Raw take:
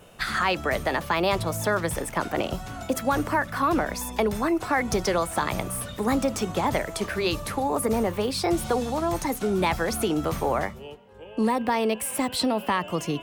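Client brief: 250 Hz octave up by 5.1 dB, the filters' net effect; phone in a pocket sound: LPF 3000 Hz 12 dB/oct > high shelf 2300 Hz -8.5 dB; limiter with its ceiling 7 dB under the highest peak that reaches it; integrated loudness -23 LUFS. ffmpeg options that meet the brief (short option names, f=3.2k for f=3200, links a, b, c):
-af "equalizer=f=250:t=o:g=6.5,alimiter=limit=-16.5dB:level=0:latency=1,lowpass=3k,highshelf=f=2.3k:g=-8.5,volume=4.5dB"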